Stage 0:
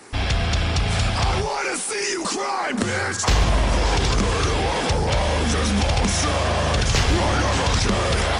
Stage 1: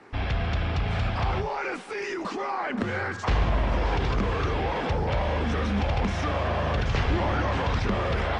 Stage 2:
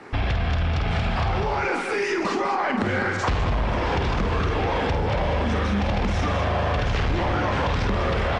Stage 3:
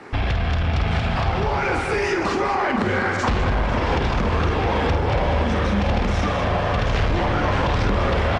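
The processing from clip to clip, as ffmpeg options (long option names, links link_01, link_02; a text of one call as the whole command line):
ffmpeg -i in.wav -af "lowpass=2500,volume=-5dB" out.wav
ffmpeg -i in.wav -af "aecho=1:1:49.56|201.2:0.447|0.447,aeval=exprs='0.266*sin(PI/2*1.58*val(0)/0.266)':channel_layout=same,acompressor=threshold=-20dB:ratio=6" out.wav
ffmpeg -i in.wav -filter_complex "[0:a]asplit=2[link_01][link_02];[link_02]aeval=exprs='clip(val(0),-1,0.0501)':channel_layout=same,volume=-10.5dB[link_03];[link_01][link_03]amix=inputs=2:normalize=0,asplit=2[link_04][link_05];[link_05]adelay=499,lowpass=frequency=2000:poles=1,volume=-7dB,asplit=2[link_06][link_07];[link_07]adelay=499,lowpass=frequency=2000:poles=1,volume=0.48,asplit=2[link_08][link_09];[link_09]adelay=499,lowpass=frequency=2000:poles=1,volume=0.48,asplit=2[link_10][link_11];[link_11]adelay=499,lowpass=frequency=2000:poles=1,volume=0.48,asplit=2[link_12][link_13];[link_13]adelay=499,lowpass=frequency=2000:poles=1,volume=0.48,asplit=2[link_14][link_15];[link_15]adelay=499,lowpass=frequency=2000:poles=1,volume=0.48[link_16];[link_04][link_06][link_08][link_10][link_12][link_14][link_16]amix=inputs=7:normalize=0" out.wav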